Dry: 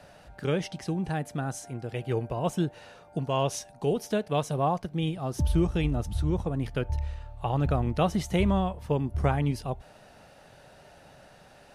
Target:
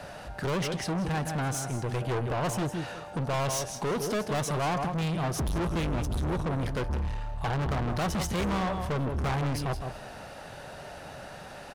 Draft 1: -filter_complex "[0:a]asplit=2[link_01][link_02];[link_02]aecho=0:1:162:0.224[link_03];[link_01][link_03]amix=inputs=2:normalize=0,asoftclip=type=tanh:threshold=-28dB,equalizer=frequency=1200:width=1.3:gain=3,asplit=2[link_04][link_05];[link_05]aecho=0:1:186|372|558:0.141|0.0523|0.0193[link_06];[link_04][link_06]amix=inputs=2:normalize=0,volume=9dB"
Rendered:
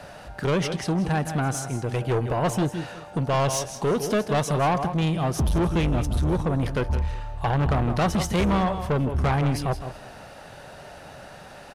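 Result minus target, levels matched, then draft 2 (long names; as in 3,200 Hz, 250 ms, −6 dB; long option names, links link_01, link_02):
soft clipping: distortion −5 dB
-filter_complex "[0:a]asplit=2[link_01][link_02];[link_02]aecho=0:1:162:0.224[link_03];[link_01][link_03]amix=inputs=2:normalize=0,asoftclip=type=tanh:threshold=-36.5dB,equalizer=frequency=1200:width=1.3:gain=3,asplit=2[link_04][link_05];[link_05]aecho=0:1:186|372|558:0.141|0.0523|0.0193[link_06];[link_04][link_06]amix=inputs=2:normalize=0,volume=9dB"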